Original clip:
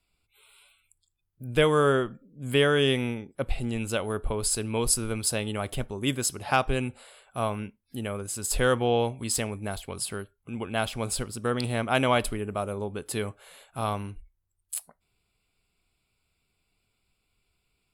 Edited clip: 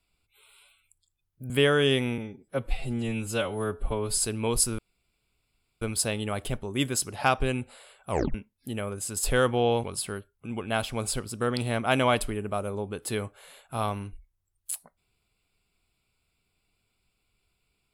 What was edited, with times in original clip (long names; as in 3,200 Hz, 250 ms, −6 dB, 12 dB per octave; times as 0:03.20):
0:01.50–0:02.47: remove
0:03.15–0:04.48: time-stretch 1.5×
0:05.09: splice in room tone 1.03 s
0:07.37: tape stop 0.25 s
0:09.11–0:09.87: remove